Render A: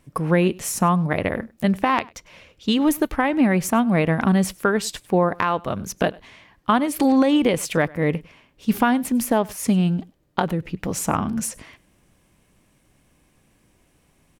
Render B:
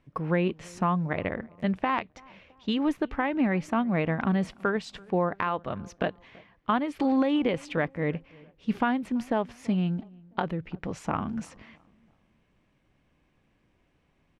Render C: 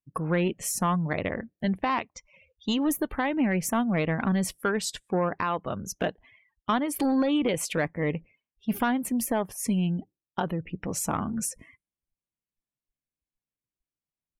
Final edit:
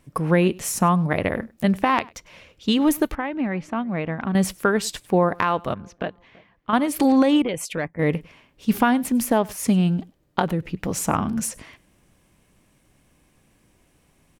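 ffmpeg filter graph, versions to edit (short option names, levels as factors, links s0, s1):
-filter_complex "[1:a]asplit=2[s0][s1];[0:a]asplit=4[s2][s3][s4][s5];[s2]atrim=end=3.152[s6];[s0]atrim=start=3.148:end=4.352[s7];[s3]atrim=start=4.348:end=5.742[s8];[s1]atrim=start=5.738:end=6.732[s9];[s4]atrim=start=6.728:end=7.422[s10];[2:a]atrim=start=7.418:end=7.992[s11];[s5]atrim=start=7.988[s12];[s6][s7]acrossfade=d=0.004:c1=hsin:c2=hsin[s13];[s13][s8]acrossfade=d=0.004:c1=hsin:c2=hsin[s14];[s14][s9]acrossfade=d=0.004:c1=hsin:c2=hsin[s15];[s15][s10]acrossfade=d=0.004:c1=hsin:c2=hsin[s16];[s16][s11]acrossfade=d=0.004:c1=hsin:c2=hsin[s17];[s17][s12]acrossfade=d=0.004:c1=hsin:c2=hsin"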